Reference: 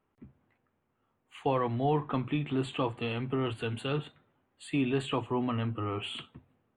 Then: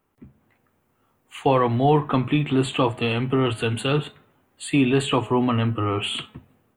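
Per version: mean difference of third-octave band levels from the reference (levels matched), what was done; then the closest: 1.0 dB: treble shelf 8.1 kHz +11.5 dB; de-hum 212.5 Hz, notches 14; level rider gain up to 4.5 dB; trim +5.5 dB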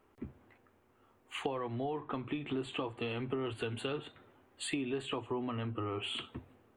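3.5 dB: peaking EQ 160 Hz -10 dB 0.5 oct; compression 10:1, threshold -44 dBFS, peak gain reduction 19.5 dB; peaking EQ 380 Hz +3.5 dB 0.52 oct; trim +9 dB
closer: first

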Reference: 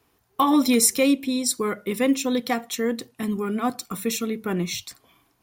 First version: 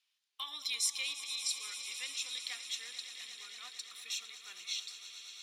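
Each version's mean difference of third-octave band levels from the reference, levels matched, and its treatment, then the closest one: 14.5 dB: ladder band-pass 4.1 kHz, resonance 35%; on a send: echo with a slow build-up 114 ms, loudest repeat 5, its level -14.5 dB; on the sum: trim +3 dB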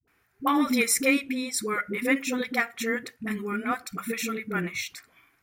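9.0 dB: high-order bell 1.8 kHz +11.5 dB 1.1 oct; phase dispersion highs, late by 77 ms, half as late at 380 Hz; trim -5.5 dB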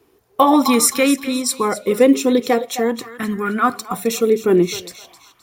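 4.0 dB: on a send: thinning echo 261 ms, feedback 37%, high-pass 640 Hz, level -13 dB; on the sum: sweeping bell 0.44 Hz 370–1600 Hz +14 dB; trim +3 dB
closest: third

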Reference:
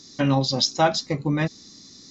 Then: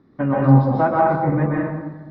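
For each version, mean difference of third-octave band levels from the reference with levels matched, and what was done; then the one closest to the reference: 12.5 dB: low-pass 1.6 kHz 24 dB/octave; plate-style reverb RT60 1.2 s, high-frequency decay 0.6×, pre-delay 115 ms, DRR -4.5 dB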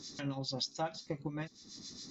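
5.5 dB: compression 3:1, threshold -40 dBFS, peak gain reduction 18.5 dB; harmonic tremolo 7.2 Hz, crossover 1.6 kHz; trim +1.5 dB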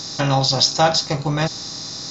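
7.5 dB: spectral levelling over time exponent 0.6; graphic EQ 250/500/2000 Hz -10/-3/-5 dB; trim +5 dB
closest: second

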